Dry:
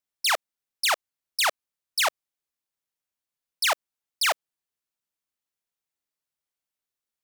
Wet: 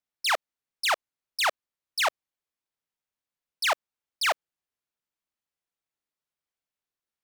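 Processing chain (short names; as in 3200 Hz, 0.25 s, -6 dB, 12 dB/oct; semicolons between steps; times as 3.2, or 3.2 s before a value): high shelf 5100 Hz -8.5 dB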